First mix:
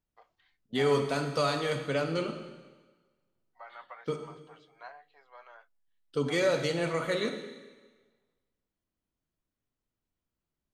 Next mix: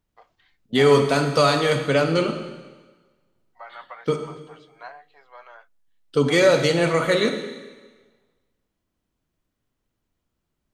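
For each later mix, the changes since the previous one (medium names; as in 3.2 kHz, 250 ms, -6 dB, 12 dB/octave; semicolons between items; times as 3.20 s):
first voice +7.0 dB; second voice +10.5 dB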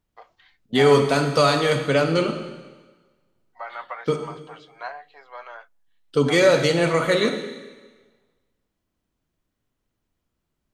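first voice +6.0 dB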